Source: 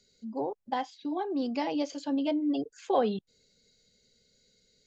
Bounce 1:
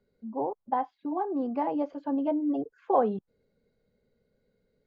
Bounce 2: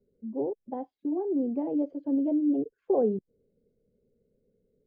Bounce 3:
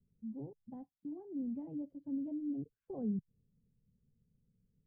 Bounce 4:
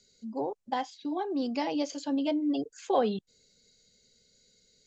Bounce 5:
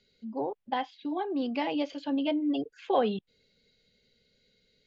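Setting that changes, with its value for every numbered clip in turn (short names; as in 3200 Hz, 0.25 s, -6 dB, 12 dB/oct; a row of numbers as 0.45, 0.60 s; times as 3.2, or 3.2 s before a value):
synth low-pass, frequency: 1100, 430, 150, 7700, 3000 Hz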